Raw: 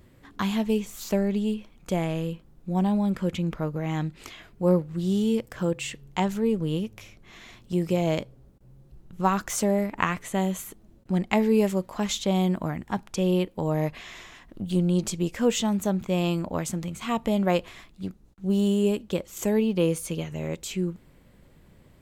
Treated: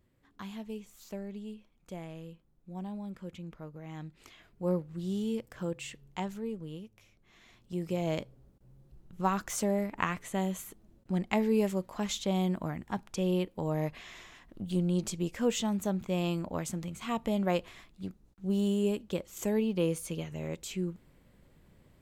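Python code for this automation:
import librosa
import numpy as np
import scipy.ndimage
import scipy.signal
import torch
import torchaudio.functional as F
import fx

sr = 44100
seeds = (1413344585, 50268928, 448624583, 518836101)

y = fx.gain(x, sr, db=fx.line((3.8, -16.0), (4.69, -9.0), (6.06, -9.0), (6.92, -17.0), (8.2, -6.0)))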